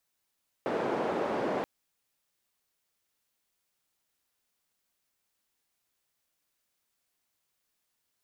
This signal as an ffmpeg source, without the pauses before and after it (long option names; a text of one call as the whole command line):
ffmpeg -f lavfi -i "anoisesrc=color=white:duration=0.98:sample_rate=44100:seed=1,highpass=frequency=290,lowpass=frequency=590,volume=-8.3dB" out.wav